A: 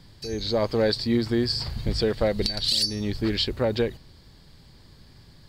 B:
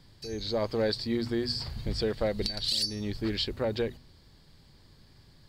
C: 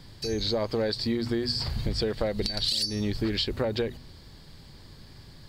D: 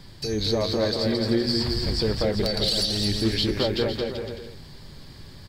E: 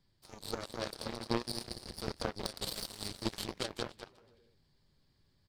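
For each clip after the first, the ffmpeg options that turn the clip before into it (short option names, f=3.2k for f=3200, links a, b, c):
-af "bandreject=f=60:t=h:w=6,bandreject=f=120:t=h:w=6,bandreject=f=180:t=h:w=6,bandreject=f=240:t=h:w=6,volume=-5.5dB"
-af "acompressor=threshold=-33dB:ratio=6,volume=8.5dB"
-af "asoftclip=type=tanh:threshold=-15.5dB,flanger=delay=5:depth=6.1:regen=72:speed=0.83:shape=sinusoidal,aecho=1:1:220|385|508.8|601.6|671.2:0.631|0.398|0.251|0.158|0.1,volume=7dB"
-af "aeval=exprs='0.282*(cos(1*acos(clip(val(0)/0.282,-1,1)))-cos(1*PI/2))+0.1*(cos(3*acos(clip(val(0)/0.282,-1,1)))-cos(3*PI/2))':c=same,volume=-4dB"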